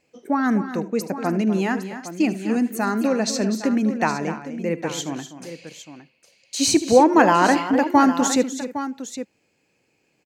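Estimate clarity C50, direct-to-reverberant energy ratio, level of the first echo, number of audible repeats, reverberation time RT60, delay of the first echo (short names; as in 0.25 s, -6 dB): none, none, -16.0 dB, 4, none, 74 ms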